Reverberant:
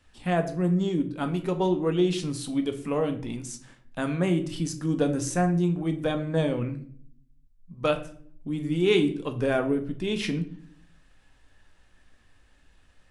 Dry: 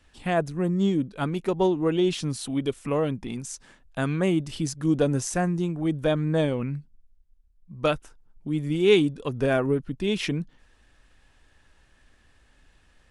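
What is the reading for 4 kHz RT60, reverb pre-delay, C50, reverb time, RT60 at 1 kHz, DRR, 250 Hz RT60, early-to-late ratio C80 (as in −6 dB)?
0.40 s, 4 ms, 12.5 dB, 0.55 s, 0.45 s, 6.0 dB, 0.90 s, 16.0 dB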